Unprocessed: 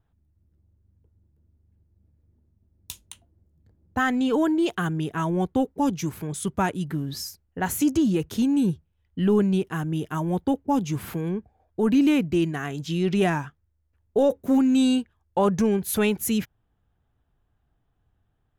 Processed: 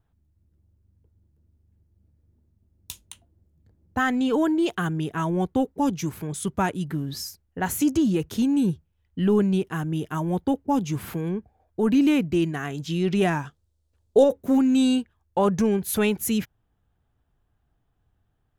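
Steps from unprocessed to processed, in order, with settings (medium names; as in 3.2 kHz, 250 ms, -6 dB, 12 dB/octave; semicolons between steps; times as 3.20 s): 13.45–14.24 s: graphic EQ 500/2000/4000/8000 Hz +6/-6/+9/+8 dB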